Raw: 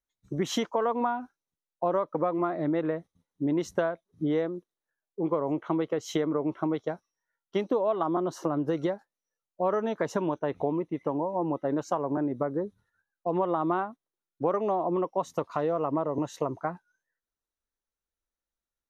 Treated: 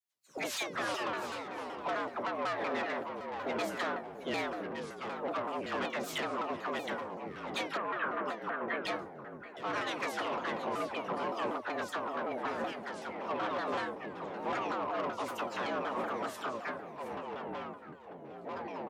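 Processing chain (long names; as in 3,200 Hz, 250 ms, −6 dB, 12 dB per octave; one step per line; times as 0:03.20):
ceiling on every frequency bin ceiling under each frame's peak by 24 dB
tuned comb filter 520 Hz, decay 0.23 s, harmonics all, mix 80%
all-pass dispersion lows, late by 48 ms, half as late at 960 Hz
soft clipping −38 dBFS, distortion −11 dB
frequency shifter +110 Hz
delay with pitch and tempo change per echo 236 ms, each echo −4 semitones, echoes 2, each echo −6 dB
0:07.77–0:08.85: loudspeaker in its box 130–2,400 Hz, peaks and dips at 280 Hz −4 dB, 790 Hz −7 dB, 1,600 Hz +7 dB
single-tap delay 719 ms −14 dB
pitch modulation by a square or saw wave saw down 5.3 Hz, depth 250 cents
level +7.5 dB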